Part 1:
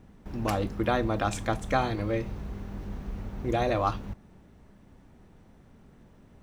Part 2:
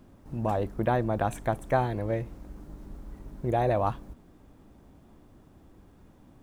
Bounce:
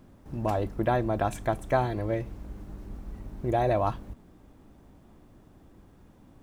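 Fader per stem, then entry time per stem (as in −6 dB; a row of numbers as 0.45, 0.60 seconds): −11.0, 0.0 decibels; 0.00, 0.00 seconds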